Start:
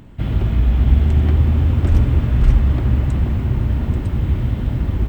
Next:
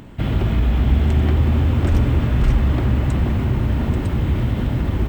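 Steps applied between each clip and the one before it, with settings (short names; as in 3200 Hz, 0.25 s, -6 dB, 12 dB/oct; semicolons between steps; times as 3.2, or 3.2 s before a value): low shelf 140 Hz -7.5 dB; in parallel at -0.5 dB: limiter -19 dBFS, peak gain reduction 11.5 dB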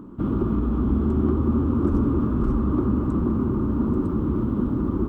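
EQ curve 130 Hz 0 dB, 200 Hz +11 dB, 340 Hz +14 dB, 700 Hz -4 dB, 1200 Hz +12 dB, 1900 Hz -16 dB, 6000 Hz -10 dB; gain -9 dB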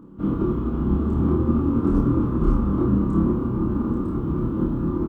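doubler 31 ms -3 dB; flutter echo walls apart 4.3 m, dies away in 0.29 s; upward expander 1.5:1, over -27 dBFS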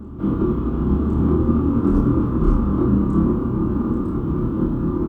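reverse echo 1.057 s -17 dB; gain +2.5 dB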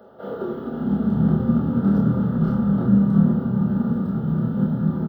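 high-pass sweep 510 Hz -> 180 Hz, 0.19–1.18; fixed phaser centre 1600 Hz, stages 8; gain +2 dB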